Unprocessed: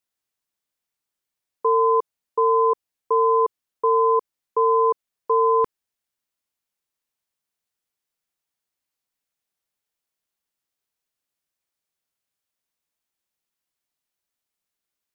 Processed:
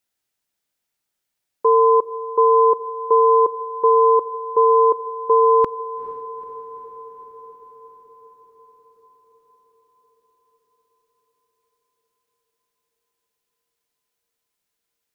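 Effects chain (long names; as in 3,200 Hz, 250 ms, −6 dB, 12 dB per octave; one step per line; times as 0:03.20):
notch filter 1,100 Hz, Q 10
feedback delay with all-pass diffusion 454 ms, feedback 68%, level −15.5 dB
level +5 dB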